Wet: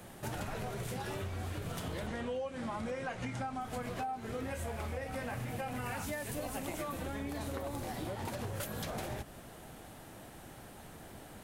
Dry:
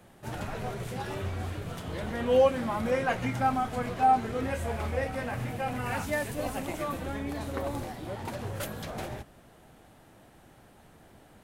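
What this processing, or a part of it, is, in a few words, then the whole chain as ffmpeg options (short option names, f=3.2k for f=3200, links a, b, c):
serial compression, peaks first: -filter_complex "[0:a]asettb=1/sr,asplit=3[a][b][c];[a]atrim=end=2.074[d];[b]atrim=start=2.07:end=3.61,asetpts=PTS-STARTPTS,afade=t=in:d=0.004:c=qsin,afade=t=out:st=1.536:d=0.004:c=qsin,lowpass=f=9.4k:w=0.5412,lowpass=f=9.4k:w=1.3066[e];[c]atrim=start=3.606[f];[d][e]acrossfade=d=0.004:c1=hsin:c2=qsin[g];[g][f]acrossfade=d=0.004:c1=qsin:c2=hsin,highshelf=f=5.4k:g=6,acompressor=threshold=-36dB:ratio=5,acompressor=threshold=-42dB:ratio=2.5,volume=4.5dB"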